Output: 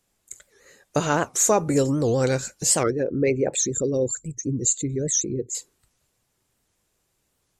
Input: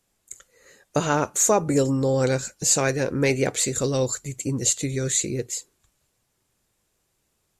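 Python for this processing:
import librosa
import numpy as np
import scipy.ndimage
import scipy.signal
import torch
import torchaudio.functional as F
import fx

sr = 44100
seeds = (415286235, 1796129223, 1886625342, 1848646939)

y = fx.envelope_sharpen(x, sr, power=2.0, at=(2.84, 5.55))
y = fx.record_warp(y, sr, rpm=78.0, depth_cents=250.0)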